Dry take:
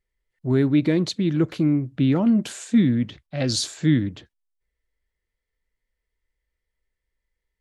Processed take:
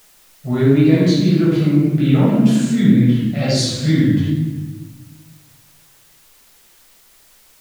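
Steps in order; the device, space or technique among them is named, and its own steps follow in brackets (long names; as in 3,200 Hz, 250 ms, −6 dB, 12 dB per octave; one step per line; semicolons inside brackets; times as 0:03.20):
rectangular room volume 780 cubic metres, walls mixed, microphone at 6.7 metres
noise-reduction cassette on a plain deck (one half of a high-frequency compander encoder only; tape wow and flutter; white noise bed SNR 34 dB)
level −7 dB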